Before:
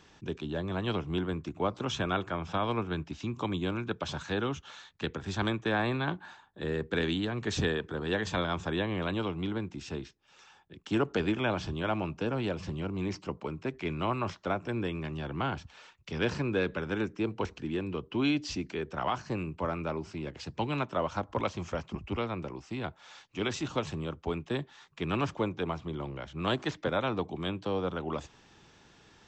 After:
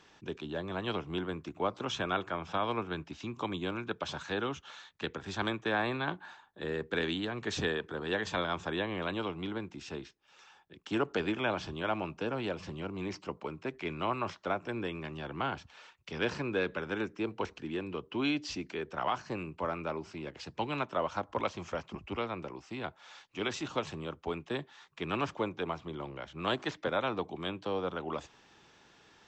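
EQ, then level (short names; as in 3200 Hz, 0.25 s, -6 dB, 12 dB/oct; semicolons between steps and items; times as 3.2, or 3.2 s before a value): low shelf 220 Hz -10 dB; high shelf 7000 Hz -6 dB; 0.0 dB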